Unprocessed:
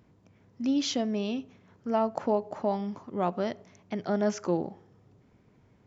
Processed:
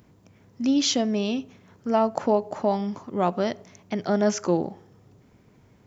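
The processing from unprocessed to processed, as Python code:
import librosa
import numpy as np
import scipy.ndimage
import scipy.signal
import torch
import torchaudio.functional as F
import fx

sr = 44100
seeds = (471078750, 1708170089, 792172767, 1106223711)

y = fx.high_shelf(x, sr, hz=6500.0, db=10.0)
y = y * librosa.db_to_amplitude(5.0)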